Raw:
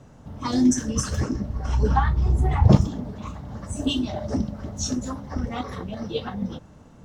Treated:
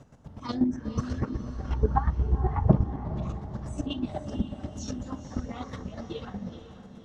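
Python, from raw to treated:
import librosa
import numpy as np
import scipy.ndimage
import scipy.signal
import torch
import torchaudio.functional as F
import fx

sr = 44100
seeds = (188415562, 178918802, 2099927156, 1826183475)

y = fx.env_lowpass_down(x, sr, base_hz=1400.0, full_db=-18.0)
y = fx.chopper(y, sr, hz=8.2, depth_pct=65, duty_pct=25)
y = fx.echo_diffused(y, sr, ms=485, feedback_pct=50, wet_db=-11.0)
y = y * librosa.db_to_amplitude(-1.5)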